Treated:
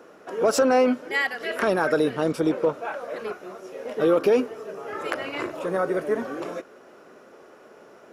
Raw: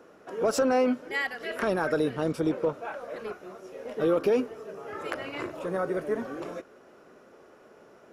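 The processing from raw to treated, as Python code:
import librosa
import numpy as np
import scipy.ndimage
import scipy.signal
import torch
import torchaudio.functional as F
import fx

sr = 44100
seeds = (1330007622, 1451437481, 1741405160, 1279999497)

y = fx.low_shelf(x, sr, hz=120.0, db=-11.0)
y = y * librosa.db_to_amplitude(5.5)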